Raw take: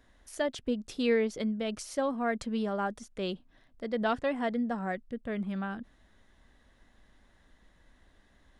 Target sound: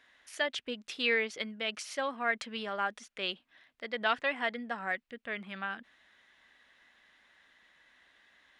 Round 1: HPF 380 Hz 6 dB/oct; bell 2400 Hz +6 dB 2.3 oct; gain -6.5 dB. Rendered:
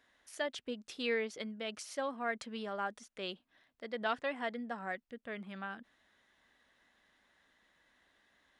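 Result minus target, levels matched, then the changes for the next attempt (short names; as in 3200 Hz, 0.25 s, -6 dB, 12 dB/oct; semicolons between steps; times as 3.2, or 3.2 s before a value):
2000 Hz band -2.5 dB
change: bell 2400 Hz +15.5 dB 2.3 oct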